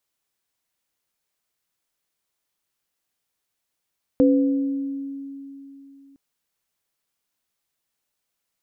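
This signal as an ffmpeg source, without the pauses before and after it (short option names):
-f lavfi -i "aevalsrc='0.224*pow(10,-3*t/3.29)*sin(2*PI*276*t)+0.168*pow(10,-3*t/1.14)*sin(2*PI*504*t)':d=1.96:s=44100"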